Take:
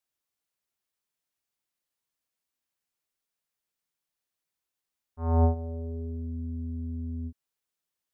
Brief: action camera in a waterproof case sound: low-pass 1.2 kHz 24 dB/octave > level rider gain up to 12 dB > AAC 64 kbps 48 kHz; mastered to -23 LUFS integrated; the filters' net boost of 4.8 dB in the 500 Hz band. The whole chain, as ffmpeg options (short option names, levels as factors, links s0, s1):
-af "lowpass=f=1200:w=0.5412,lowpass=f=1200:w=1.3066,equalizer=f=500:t=o:g=6,dynaudnorm=m=3.98,volume=2.37" -ar 48000 -c:a aac -b:a 64k